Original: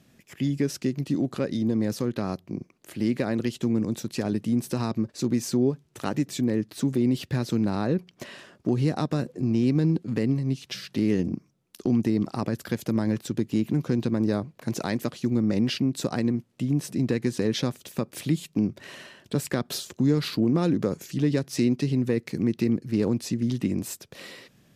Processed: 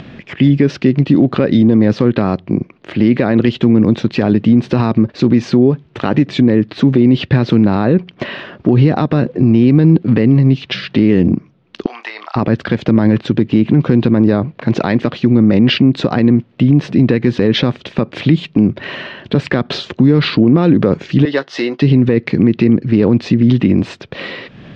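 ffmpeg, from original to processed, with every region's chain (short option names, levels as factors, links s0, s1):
-filter_complex "[0:a]asettb=1/sr,asplit=3[s0][s1][s2];[s0]atrim=end=11.864[s3];[s1]atrim=start=11.86:end=12.36,asetpts=PTS-STARTPTS,afade=t=in:d=0.004:c=qsin,afade=t=out:st=0.496:d=0.004:c=qsin,highpass=f=870:w=0.5412,highpass=f=870:w=1.3066,asplit=2[s4][s5];[s5]adelay=29,volume=0.316[s6];[s4][s6]amix=inputs=2:normalize=0,atrim=end_sample=22050[s7];[s2]atrim=start=12.356[s8];[s3][s7]acrossfade=d=0.004:c1=hsin:c2=qsin[s9];[s9][s8]acrossfade=d=0.004:c1=qsin:c2=hsin,asettb=1/sr,asplit=3[s10][s11][s12];[s10]atrim=end=21.254[s13];[s11]atrim=start=21.25:end=21.82,asetpts=PTS-STARTPTS,afade=t=in:d=0.004:c=qsin,afade=t=out:st=0.566:d=0.004:c=qsin,highpass=640,bandreject=f=2400:w=5.8,asplit=2[s14][s15];[s15]adelay=14,volume=0.299[s16];[s14][s16]amix=inputs=2:normalize=0,atrim=end_sample=25137[s17];[s12]atrim=start=21.816[s18];[s13][s17]acrossfade=d=0.004:c1=hsin:c2=qsin[s19];[s19][s18]acrossfade=d=0.004:c1=qsin:c2=hsin,lowpass=f=3500:w=0.5412,lowpass=f=3500:w=1.3066,acompressor=mode=upward:threshold=0.00631:ratio=2.5,alimiter=level_in=8.91:limit=0.891:release=50:level=0:latency=1,volume=0.891"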